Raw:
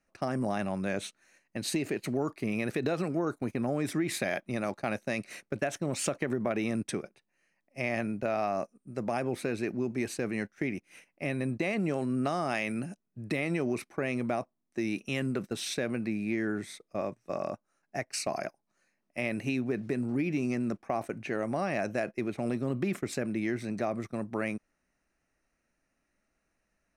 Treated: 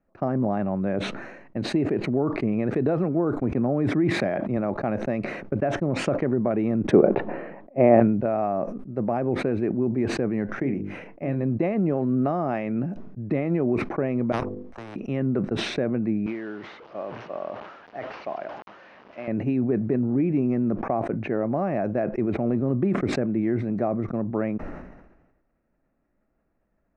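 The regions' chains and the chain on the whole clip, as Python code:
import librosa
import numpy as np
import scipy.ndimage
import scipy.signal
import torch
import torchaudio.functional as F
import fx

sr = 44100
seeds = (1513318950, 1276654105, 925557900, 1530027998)

y = fx.chain(x, sr, fx.highpass(hz=60.0, slope=24),
    fx.sustainer(db_per_s=35.0), at=(3.5, 4.57))
y = fx.chain(y, sr, fx.lowpass(hz=4100.0, slope=24),
    fx.peak_eq(hz=510.0, db=13.0, octaves=3.0), at=(6.91, 8.0))
y = fx.chain(y, sr, fx.hum_notches(base_hz=50, count=10),
    fx.doubler(ms=29.0, db=-13.5), at=(10.49, 11.43))
y = fx.chain(y, sr, fx.hum_notches(base_hz=50, count=10),
    fx.level_steps(step_db=11),
    fx.spectral_comp(ratio=10.0), at=(14.32, 14.96))
y = fx.chain(y, sr, fx.delta_mod(bps=32000, step_db=-37.5),
    fx.highpass(hz=960.0, slope=6),
    fx.peak_eq(hz=2900.0, db=5.5, octaves=0.21), at=(16.26, 19.28))
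y = scipy.signal.sosfilt(scipy.signal.bessel(2, 780.0, 'lowpass', norm='mag', fs=sr, output='sos'), y)
y = fx.sustainer(y, sr, db_per_s=50.0)
y = F.gain(torch.from_numpy(y), 7.5).numpy()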